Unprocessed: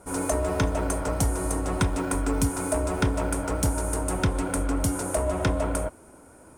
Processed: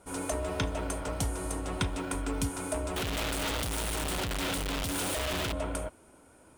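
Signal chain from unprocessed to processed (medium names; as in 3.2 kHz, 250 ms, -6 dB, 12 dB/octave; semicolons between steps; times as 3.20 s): 2.96–5.53 s: one-bit comparator; peaking EQ 3.2 kHz +9 dB 1.1 oct; trim -7.5 dB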